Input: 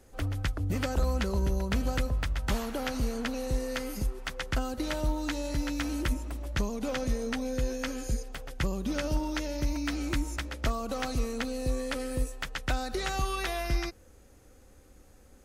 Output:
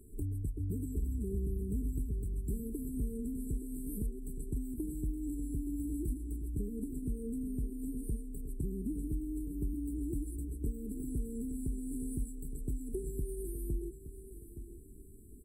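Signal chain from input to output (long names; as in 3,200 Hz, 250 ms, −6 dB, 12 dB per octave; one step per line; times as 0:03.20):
brick-wall band-stop 460–7,600 Hz
downward compressor 2 to 1, threshold −43 dBFS, peak gain reduction 11 dB
on a send: repeating echo 869 ms, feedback 27%, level −12 dB
on the sum: level +3 dB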